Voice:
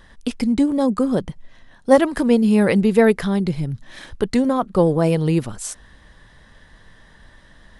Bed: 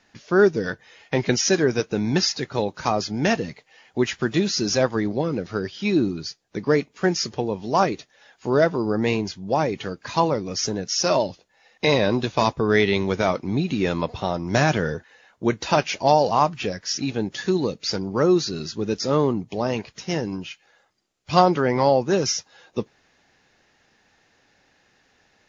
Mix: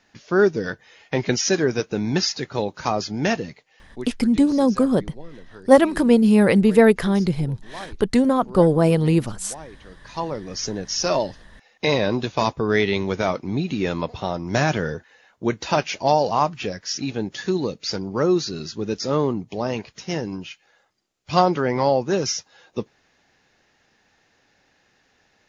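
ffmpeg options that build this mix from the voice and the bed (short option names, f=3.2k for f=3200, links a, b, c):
-filter_complex "[0:a]adelay=3800,volume=0.5dB[a];[1:a]volume=16dB,afade=t=out:st=3.27:d=0.89:silence=0.141254,afade=t=in:st=9.84:d=0.98:silence=0.149624[b];[a][b]amix=inputs=2:normalize=0"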